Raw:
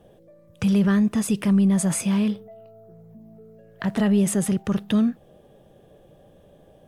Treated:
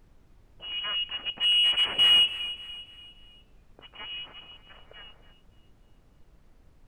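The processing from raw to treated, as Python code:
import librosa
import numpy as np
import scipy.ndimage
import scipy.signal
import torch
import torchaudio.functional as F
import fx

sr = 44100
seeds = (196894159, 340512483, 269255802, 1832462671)

p1 = fx.self_delay(x, sr, depth_ms=0.49)
p2 = fx.doppler_pass(p1, sr, speed_mps=13, closest_m=4.3, pass_at_s=2.23)
p3 = fx.freq_invert(p2, sr, carrier_hz=3100)
p4 = fx.env_lowpass(p3, sr, base_hz=500.0, full_db=-22.5)
p5 = fx.peak_eq(p4, sr, hz=1200.0, db=3.5, octaves=2.9)
p6 = np.clip(p5, -10.0 ** (-24.0 / 20.0), 10.0 ** (-24.0 / 20.0))
p7 = p5 + (p6 * librosa.db_to_amplitude(-9.5))
p8 = fx.dmg_noise_colour(p7, sr, seeds[0], colour='brown', level_db=-54.0)
p9 = p8 + fx.echo_feedback(p8, sr, ms=290, feedback_pct=43, wet_db=-15, dry=0)
p10 = fx.spec_box(p9, sr, start_s=4.68, length_s=0.64, low_hz=430.0, high_hz=2400.0, gain_db=7)
y = p10 * librosa.db_to_amplitude(-1.0)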